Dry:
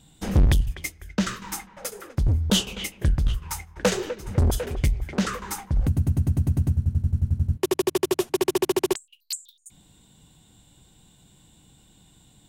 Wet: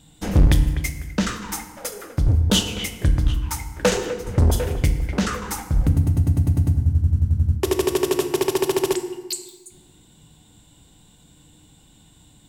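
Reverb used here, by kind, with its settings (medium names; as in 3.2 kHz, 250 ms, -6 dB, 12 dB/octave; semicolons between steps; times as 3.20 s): FDN reverb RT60 1.3 s, low-frequency decay 1.3×, high-frequency decay 0.65×, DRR 6.5 dB; trim +2.5 dB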